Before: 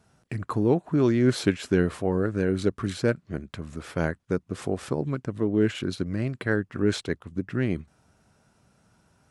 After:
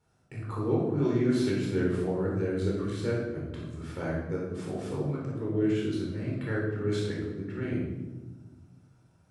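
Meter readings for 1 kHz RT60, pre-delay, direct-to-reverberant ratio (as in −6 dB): 1.1 s, 13 ms, −5.0 dB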